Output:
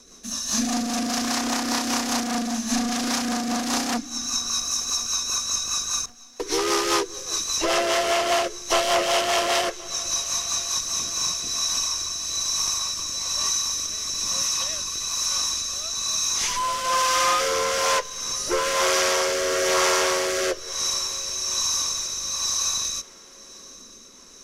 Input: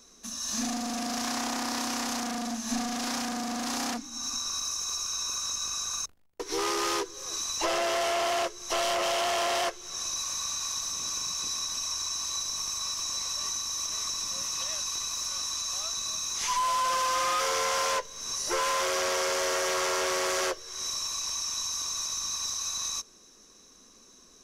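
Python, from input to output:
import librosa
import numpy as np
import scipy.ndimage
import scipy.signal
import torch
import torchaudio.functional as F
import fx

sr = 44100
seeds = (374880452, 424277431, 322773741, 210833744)

p1 = fx.rotary_switch(x, sr, hz=5.0, then_hz=1.1, switch_at_s=10.75)
p2 = p1 + fx.echo_thinned(p1, sr, ms=1076, feedback_pct=53, hz=210.0, wet_db=-22.5, dry=0)
y = p2 * 10.0 ** (9.0 / 20.0)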